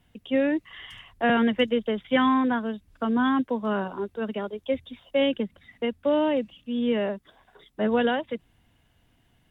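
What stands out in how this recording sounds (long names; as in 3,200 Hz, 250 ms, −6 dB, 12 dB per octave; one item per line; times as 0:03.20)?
background noise floor −65 dBFS
spectral slope −3.5 dB per octave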